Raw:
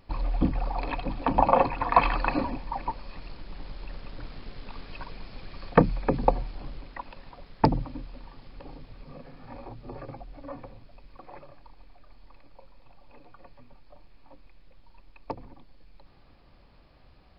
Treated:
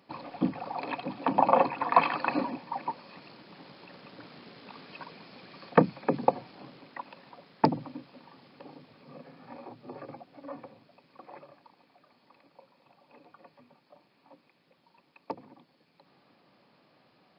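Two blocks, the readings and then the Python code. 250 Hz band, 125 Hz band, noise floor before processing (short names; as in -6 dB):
-2.0 dB, -7.0 dB, -55 dBFS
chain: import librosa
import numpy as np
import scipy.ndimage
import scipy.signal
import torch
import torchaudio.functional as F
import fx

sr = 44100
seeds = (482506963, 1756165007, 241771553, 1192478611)

y = scipy.signal.sosfilt(scipy.signal.butter(4, 160.0, 'highpass', fs=sr, output='sos'), x)
y = y * 10.0 ** (-1.5 / 20.0)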